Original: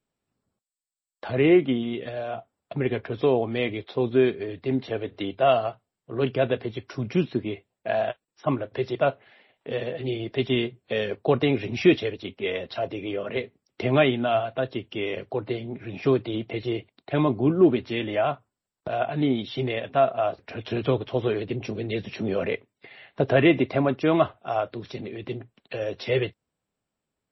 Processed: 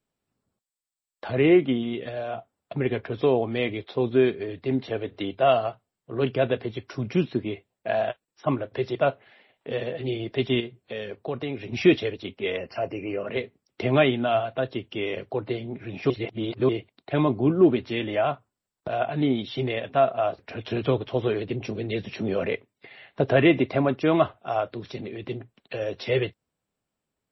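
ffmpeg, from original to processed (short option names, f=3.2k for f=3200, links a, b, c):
-filter_complex "[0:a]asettb=1/sr,asplit=3[a][b][c];[a]atrim=end=10.604[d];[b]atrim=start=10.6:end=11.73,asetpts=PTS-STARTPTS,afade=t=in:d=0.004:c=qsin,afade=t=out:st=1.126:d=0.004:c=qsin,acompressor=threshold=-42dB:ratio=1.5:attack=3.2:release=140:knee=1:detection=peak[e];[c]atrim=start=11.726[f];[d][e]acrossfade=d=0.004:c1=hsin:c2=qsin[g];[g][f]acrossfade=d=0.004:c1=qsin:c2=hsin,asplit=3[h][i][j];[h]afade=t=out:st=12.56:d=0.02[k];[i]asuperstop=centerf=3600:order=20:qfactor=2.7,afade=t=in:st=12.56:d=0.02,afade=t=out:st=13.26:d=0.02[l];[j]afade=t=in:st=13.26:d=0.02[m];[k][l][m]amix=inputs=3:normalize=0,asplit=3[n][o][p];[n]atrim=end=16.102[q];[o]atrim=start=16.098:end=16.692,asetpts=PTS-STARTPTS,areverse[r];[p]atrim=start=16.688[s];[q][r]acrossfade=d=0.004:c1=hsin:c2=hsin[t];[t][s]acrossfade=d=0.004:c1=hsin:c2=hsin"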